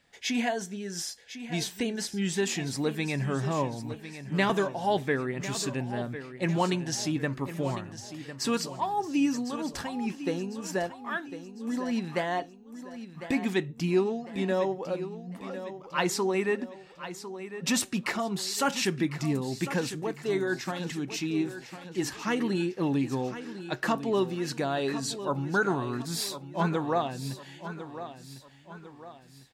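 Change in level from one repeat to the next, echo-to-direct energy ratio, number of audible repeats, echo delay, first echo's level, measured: -7.0 dB, -11.0 dB, 3, 1.052 s, -12.0 dB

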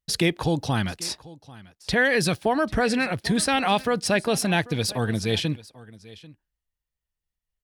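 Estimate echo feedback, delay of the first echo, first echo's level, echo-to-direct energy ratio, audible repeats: no steady repeat, 0.791 s, -20.5 dB, -20.5 dB, 1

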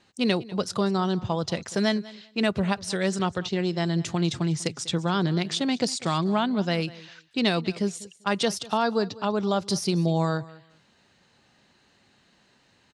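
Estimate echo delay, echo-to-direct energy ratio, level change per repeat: 0.196 s, -20.0 dB, -14.5 dB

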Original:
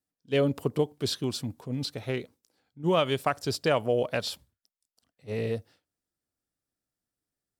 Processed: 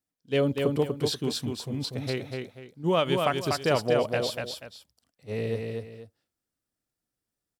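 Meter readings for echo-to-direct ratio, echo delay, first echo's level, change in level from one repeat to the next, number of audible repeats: -3.5 dB, 0.242 s, -4.0 dB, -10.5 dB, 2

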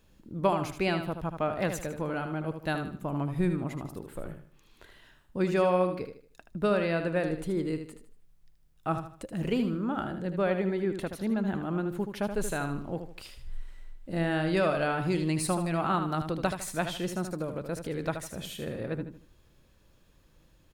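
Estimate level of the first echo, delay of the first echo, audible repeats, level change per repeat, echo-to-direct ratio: -8.0 dB, 77 ms, 3, -9.5 dB, -7.5 dB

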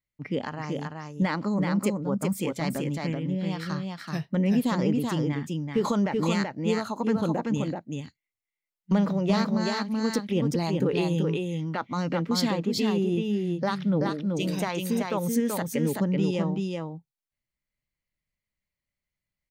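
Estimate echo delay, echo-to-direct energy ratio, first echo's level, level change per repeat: 0.381 s, -3.5 dB, -3.5 dB, no steady repeat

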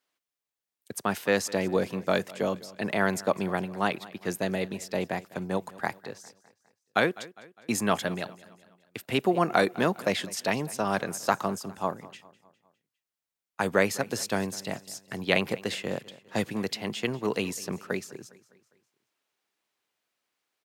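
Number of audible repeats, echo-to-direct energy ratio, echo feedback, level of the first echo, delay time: 3, -19.0 dB, 49%, -20.0 dB, 0.203 s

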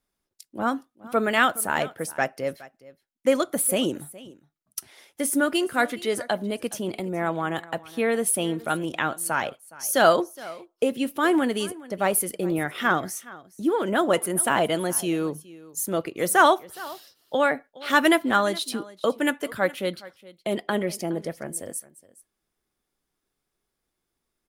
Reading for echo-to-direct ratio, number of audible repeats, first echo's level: -20.0 dB, 1, -20.0 dB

